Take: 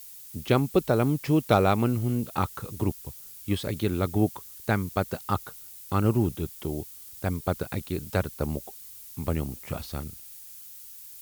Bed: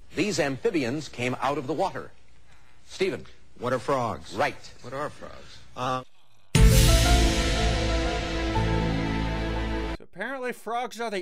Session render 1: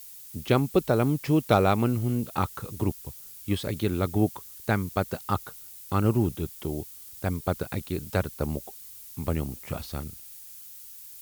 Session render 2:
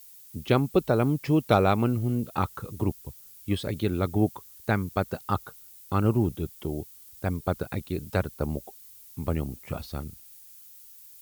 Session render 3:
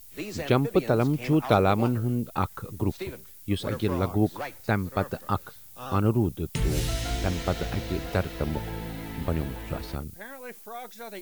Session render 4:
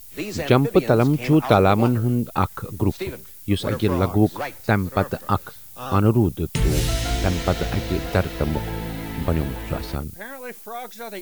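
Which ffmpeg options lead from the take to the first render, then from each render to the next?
-af anull
-af "afftdn=nr=6:nf=-45"
-filter_complex "[1:a]volume=-10dB[a];[0:a][a]amix=inputs=2:normalize=0"
-af "volume=6dB,alimiter=limit=-3dB:level=0:latency=1"

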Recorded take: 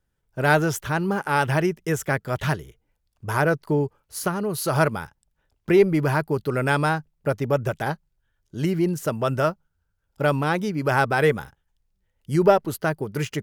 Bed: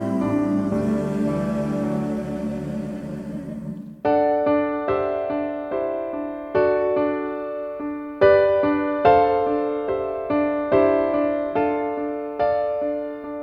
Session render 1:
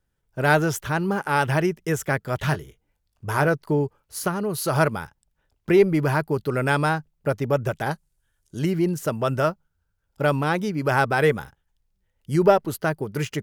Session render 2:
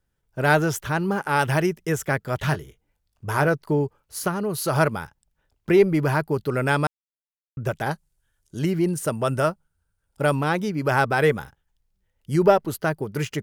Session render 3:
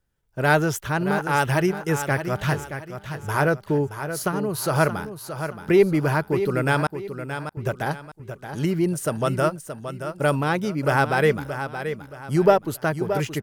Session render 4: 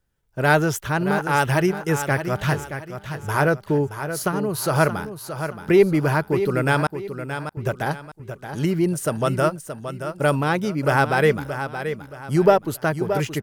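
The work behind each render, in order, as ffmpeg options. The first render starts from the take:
-filter_complex "[0:a]asettb=1/sr,asplit=3[a][b][c];[a]atrim=end=2.464[d];[b]atrim=start=2.46:end=3.48,asetpts=PTS-STARTPTS,afade=t=in:d=0.004:c=qsin,afade=t=out:st=1.016:d=0.004:c=qsin,asplit=2[e][f];[f]adelay=21,volume=-10.5dB[g];[e][g]amix=inputs=2:normalize=0,atrim=end_sample=44982[h];[c]atrim=start=3.476[i];[d][h]acrossfade=d=0.004:c1=hsin:c2=qsin[j];[j][i]acrossfade=d=0.004:c1=qsin:c2=hsin,asettb=1/sr,asplit=3[k][l][m];[k]atrim=end=7.914[n];[l]atrim=start=7.91:end=8.59,asetpts=PTS-STARTPTS,afade=t=in:d=0.004:c=qsin,afade=t=out:st=0.676:d=0.004:c=qsin,equalizer=f=9.5k:t=o:w=1.3:g=14[o];[m]atrim=start=8.586[p];[n][o]acrossfade=d=0.004:c1=hsin:c2=qsin[q];[q][p]acrossfade=d=0.004:c1=qsin:c2=hsin"
-filter_complex "[0:a]asettb=1/sr,asplit=3[a][b][c];[a]atrim=end=1.394[d];[b]atrim=start=1.39:end=1.82,asetpts=PTS-STARTPTS,afade=t=in:d=0.004:c=qsin,afade=t=out:st=0.426:d=0.004:c=qsin,highshelf=f=5.2k:g=5[e];[c]atrim=start=1.816[f];[d][e]acrossfade=d=0.004:c1=hsin:c2=qsin[g];[g][f]acrossfade=d=0.004:c1=qsin:c2=hsin,asettb=1/sr,asplit=3[h][i][j];[h]atrim=end=8.844[k];[i]atrim=start=8.84:end=10.35,asetpts=PTS-STARTPTS,afade=t=in:d=0.004:c=qsin,afade=t=out:st=1.506:d=0.004:c=qsin,equalizer=f=9.2k:t=o:w=0.25:g=11.5[l];[j]atrim=start=10.346[m];[k][l]acrossfade=d=0.004:c1=hsin:c2=qsin[n];[n][m]acrossfade=d=0.004:c1=qsin:c2=hsin,asplit=3[o][p][q];[o]atrim=end=6.87,asetpts=PTS-STARTPTS,afade=t=out:st=6.866:d=0.004:c=hsin[r];[p]atrim=start=6.87:end=7.57,asetpts=PTS-STARTPTS,volume=0[s];[q]atrim=start=7.57,asetpts=PTS-STARTPTS,afade=t=in:d=0.004:c=hsin[t];[r][s][t]concat=n=3:v=0:a=1"
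-af "aecho=1:1:624|1248|1872|2496:0.335|0.114|0.0387|0.0132"
-af "volume=1.5dB,alimiter=limit=-3dB:level=0:latency=1"

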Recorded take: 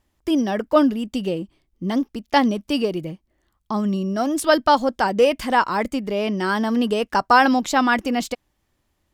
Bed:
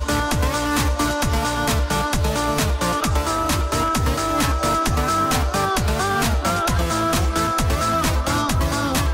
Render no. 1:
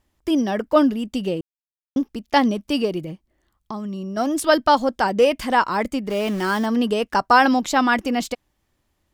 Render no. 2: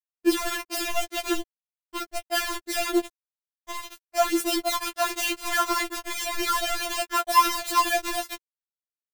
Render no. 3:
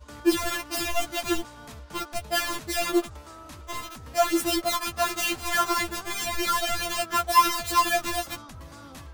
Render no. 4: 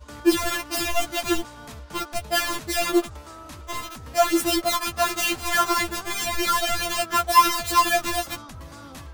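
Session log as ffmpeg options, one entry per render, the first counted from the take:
-filter_complex "[0:a]asettb=1/sr,asplit=3[a][b][c];[a]atrim=end=2.994[d];[b]atrim=start=2.99:end=4.17,asetpts=PTS-STARTPTS,afade=t=in:d=0.004:c=qsin,afade=t=out:st=1.176:d=0.004:c=qsin,acompressor=threshold=-26dB:ratio=6:attack=3.2:release=140:knee=1:detection=peak[e];[c]atrim=start=4.166[f];[d][e]acrossfade=d=0.004:c1=hsin:c2=qsin[g];[g][f]acrossfade=d=0.004:c1=qsin:c2=hsin,asplit=3[h][i][j];[h]afade=t=out:st=6.09:d=0.02[k];[i]aeval=exprs='val(0)*gte(abs(val(0)),0.0266)':c=same,afade=t=in:st=6.09:d=0.02,afade=t=out:st=6.65:d=0.02[l];[j]afade=t=in:st=6.65:d=0.02[m];[k][l][m]amix=inputs=3:normalize=0,asplit=3[n][o][p];[n]atrim=end=1.41,asetpts=PTS-STARTPTS,afade=t=out:st=1.406:d=0.004:c=hsin[q];[o]atrim=start=1.41:end=1.96,asetpts=PTS-STARTPTS,volume=0[r];[p]atrim=start=1.96,asetpts=PTS-STARTPTS,afade=t=in:d=0.004:c=hsin[s];[q][r][s]concat=n=3:v=0:a=1"
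-af "acrusher=bits=3:mix=0:aa=0.000001,afftfilt=real='re*4*eq(mod(b,16),0)':imag='im*4*eq(mod(b,16),0)':win_size=2048:overlap=0.75"
-filter_complex "[1:a]volume=-23.5dB[a];[0:a][a]amix=inputs=2:normalize=0"
-af "volume=3dB"

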